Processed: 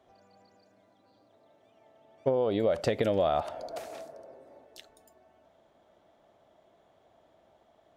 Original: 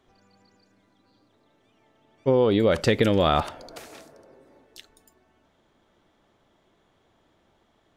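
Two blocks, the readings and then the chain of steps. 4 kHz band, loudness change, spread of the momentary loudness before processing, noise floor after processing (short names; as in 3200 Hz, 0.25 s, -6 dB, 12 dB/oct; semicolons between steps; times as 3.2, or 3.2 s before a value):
-11.5 dB, -7.5 dB, 8 LU, -66 dBFS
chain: HPF 42 Hz; bell 650 Hz +13.5 dB 0.69 oct; compressor 6:1, threshold -19 dBFS, peak gain reduction 10.5 dB; gain -4.5 dB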